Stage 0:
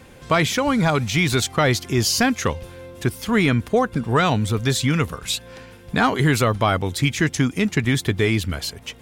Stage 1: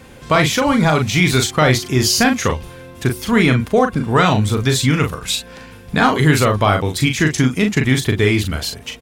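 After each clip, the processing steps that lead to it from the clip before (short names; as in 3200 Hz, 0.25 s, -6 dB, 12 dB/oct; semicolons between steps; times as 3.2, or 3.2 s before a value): doubler 39 ms -5.5 dB; de-hum 364.9 Hz, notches 3; gain +3.5 dB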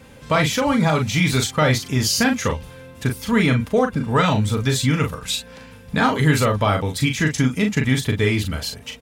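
notch comb 360 Hz; gain -3 dB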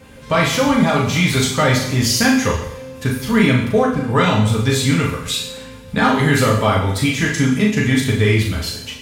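two-slope reverb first 0.71 s, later 2.7 s, from -26 dB, DRR -0.5 dB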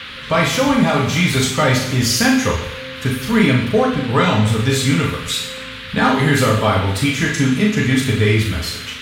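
band noise 1200–3800 Hz -33 dBFS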